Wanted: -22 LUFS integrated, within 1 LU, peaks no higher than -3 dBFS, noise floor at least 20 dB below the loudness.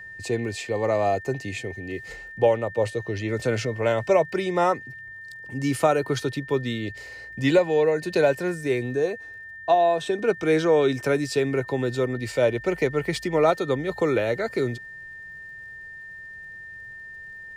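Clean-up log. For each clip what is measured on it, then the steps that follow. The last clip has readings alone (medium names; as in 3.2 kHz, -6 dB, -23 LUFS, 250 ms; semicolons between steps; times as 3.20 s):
tick rate 51 per s; steady tone 1.8 kHz; tone level -38 dBFS; loudness -24.0 LUFS; peak level -8.5 dBFS; loudness target -22.0 LUFS
-> de-click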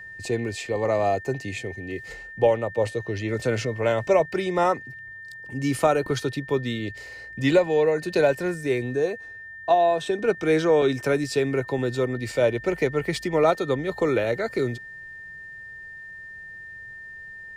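tick rate 0.28 per s; steady tone 1.8 kHz; tone level -38 dBFS
-> band-stop 1.8 kHz, Q 30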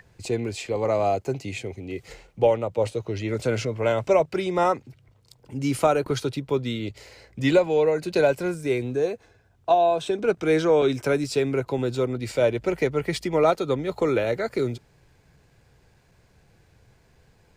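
steady tone not found; loudness -24.0 LUFS; peak level -8.5 dBFS; loudness target -22.0 LUFS
-> trim +2 dB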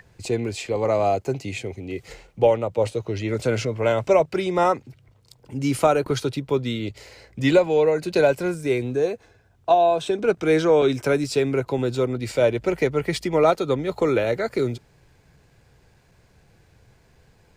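loudness -22.0 LUFS; peak level -6.5 dBFS; noise floor -58 dBFS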